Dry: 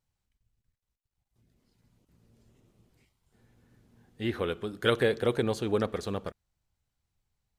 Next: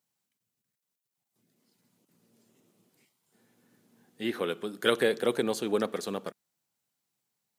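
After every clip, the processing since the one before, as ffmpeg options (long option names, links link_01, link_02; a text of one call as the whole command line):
ffmpeg -i in.wav -af "highpass=frequency=170:width=0.5412,highpass=frequency=170:width=1.3066,highshelf=frequency=6700:gain=10" out.wav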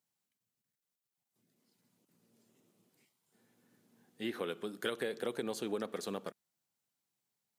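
ffmpeg -i in.wav -af "acompressor=threshold=-28dB:ratio=6,volume=-4.5dB" out.wav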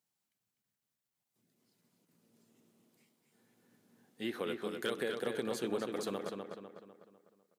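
ffmpeg -i in.wav -filter_complex "[0:a]volume=25dB,asoftclip=hard,volume=-25dB,asplit=2[link_01][link_02];[link_02]adelay=250,lowpass=frequency=3600:poles=1,volume=-4.5dB,asplit=2[link_03][link_04];[link_04]adelay=250,lowpass=frequency=3600:poles=1,volume=0.46,asplit=2[link_05][link_06];[link_06]adelay=250,lowpass=frequency=3600:poles=1,volume=0.46,asplit=2[link_07][link_08];[link_08]adelay=250,lowpass=frequency=3600:poles=1,volume=0.46,asplit=2[link_09][link_10];[link_10]adelay=250,lowpass=frequency=3600:poles=1,volume=0.46,asplit=2[link_11][link_12];[link_12]adelay=250,lowpass=frequency=3600:poles=1,volume=0.46[link_13];[link_01][link_03][link_05][link_07][link_09][link_11][link_13]amix=inputs=7:normalize=0" out.wav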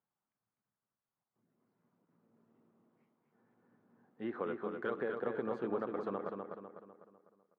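ffmpeg -i in.wav -af "lowpass=frequency=1200:width_type=q:width=1.7,volume=-1.5dB" out.wav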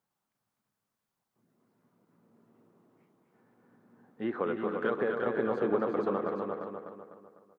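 ffmpeg -i in.wav -af "aecho=1:1:349:0.501,volume=6.5dB" out.wav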